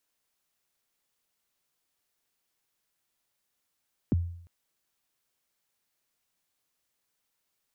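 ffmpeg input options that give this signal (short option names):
-f lavfi -i "aevalsrc='0.112*pow(10,-3*t/0.64)*sin(2*PI*(350*0.021/log(86/350)*(exp(log(86/350)*min(t,0.021)/0.021)-1)+86*max(t-0.021,0)))':d=0.35:s=44100"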